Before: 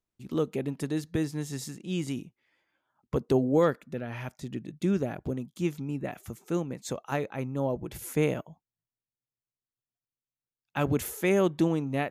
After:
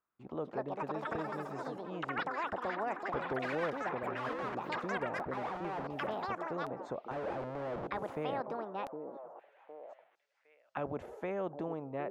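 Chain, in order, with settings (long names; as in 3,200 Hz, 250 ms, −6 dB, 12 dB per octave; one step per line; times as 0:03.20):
0:07.11–0:07.87: sign of each sample alone
low-shelf EQ 150 Hz −5.5 dB
de-essing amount 55%
spectral tilt −3.5 dB per octave
in parallel at −3 dB: downward compressor, threshold −29 dBFS, peak gain reduction 14 dB
on the sum: envelope filter 580–1,300 Hz, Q 3.3, down, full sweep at −25.5 dBFS
on a send: echo through a band-pass that steps 761 ms, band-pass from 350 Hz, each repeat 1.4 octaves, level −9.5 dB
on the sum: delay with pitch and tempo change per echo 306 ms, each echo +6 semitones, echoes 3
every bin compressed towards the loudest bin 2 to 1
level −8.5 dB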